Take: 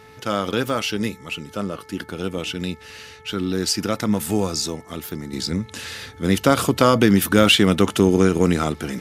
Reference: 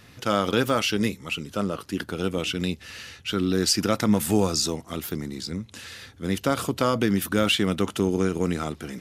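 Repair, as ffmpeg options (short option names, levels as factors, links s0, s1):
-af "bandreject=f=436.5:t=h:w=4,bandreject=f=873:t=h:w=4,bandreject=f=1309.5:t=h:w=4,bandreject=f=1746:t=h:w=4,bandreject=f=2182.5:t=h:w=4,asetnsamples=n=441:p=0,asendcmd='5.33 volume volume -7.5dB',volume=1"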